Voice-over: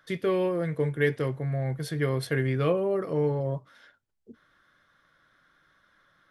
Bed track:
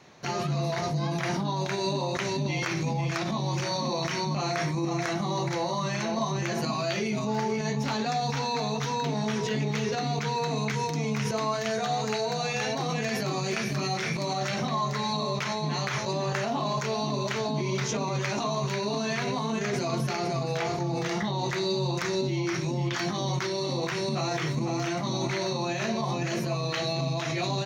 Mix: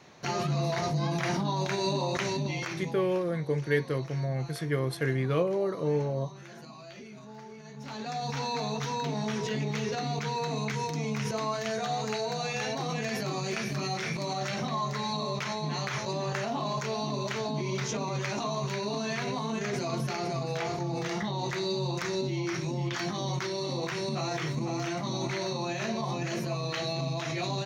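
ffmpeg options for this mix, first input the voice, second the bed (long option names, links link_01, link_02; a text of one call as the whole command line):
ffmpeg -i stem1.wav -i stem2.wav -filter_complex "[0:a]adelay=2700,volume=-2dB[link_01];[1:a]volume=14.5dB,afade=type=out:start_time=2.22:duration=0.91:silence=0.133352,afade=type=in:start_time=7.72:duration=0.71:silence=0.177828[link_02];[link_01][link_02]amix=inputs=2:normalize=0" out.wav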